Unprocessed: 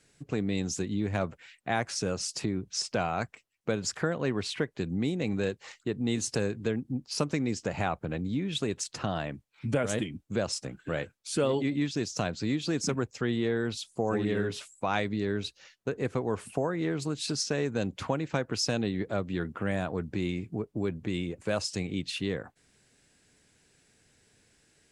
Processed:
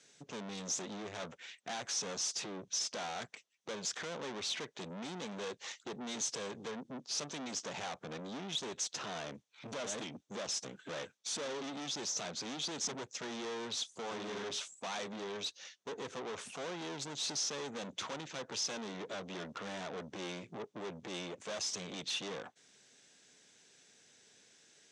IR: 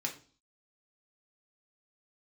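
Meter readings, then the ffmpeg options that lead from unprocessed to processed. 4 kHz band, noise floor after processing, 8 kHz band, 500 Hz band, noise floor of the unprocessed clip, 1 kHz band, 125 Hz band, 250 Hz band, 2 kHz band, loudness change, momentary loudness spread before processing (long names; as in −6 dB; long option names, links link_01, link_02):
−2.0 dB, −70 dBFS, −0.5 dB, −11.5 dB, −68 dBFS, −8.0 dB, −19.0 dB, −15.0 dB, −8.5 dB, −8.0 dB, 6 LU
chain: -af "aeval=exprs='(tanh(112*val(0)+0.6)-tanh(0.6))/112':channel_layout=same,highpass=240,equalizer=frequency=310:width_type=q:width=4:gain=-4,equalizer=frequency=3500:width_type=q:width=4:gain=7,equalizer=frequency=6100:width_type=q:width=4:gain=9,lowpass=frequency=8400:width=0.5412,lowpass=frequency=8400:width=1.3066,volume=3dB"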